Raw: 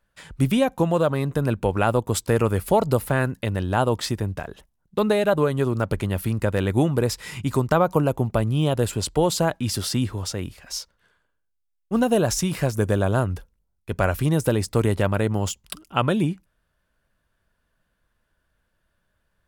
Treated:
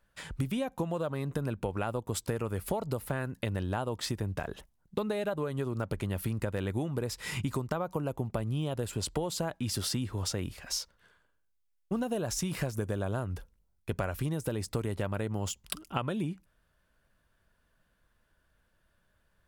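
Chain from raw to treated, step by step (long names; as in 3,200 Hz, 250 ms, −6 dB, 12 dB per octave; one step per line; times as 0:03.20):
downward compressor 10 to 1, threshold −29 dBFS, peak gain reduction 16 dB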